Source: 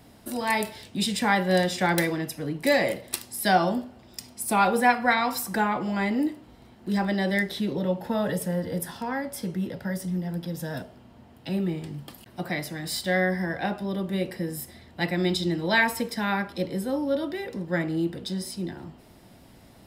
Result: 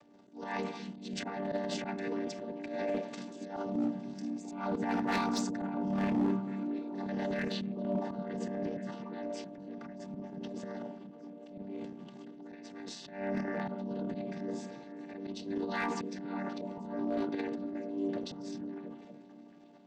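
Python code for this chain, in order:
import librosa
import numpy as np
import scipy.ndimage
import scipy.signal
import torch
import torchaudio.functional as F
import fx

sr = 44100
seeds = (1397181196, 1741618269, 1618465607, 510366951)

y = fx.chord_vocoder(x, sr, chord='minor triad', root=55)
y = fx.bass_treble(y, sr, bass_db=9, treble_db=6, at=(3.66, 6.2))
y = fx.auto_swell(y, sr, attack_ms=234.0)
y = fx.peak_eq(y, sr, hz=210.0, db=-10.5, octaves=0.32)
y = fx.transient(y, sr, attack_db=-7, sustain_db=11)
y = np.clip(10.0 ** (22.0 / 20.0) * y, -1.0, 1.0) / 10.0 ** (22.0 / 20.0)
y = fx.echo_stepped(y, sr, ms=232, hz=160.0, octaves=0.7, feedback_pct=70, wet_db=-3)
y = y * librosa.db_to_amplitude(-4.0)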